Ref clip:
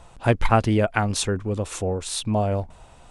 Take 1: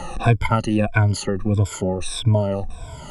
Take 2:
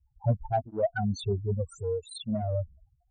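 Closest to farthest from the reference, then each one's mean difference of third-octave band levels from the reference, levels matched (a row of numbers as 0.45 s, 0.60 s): 1, 2; 4.5 dB, 13.0 dB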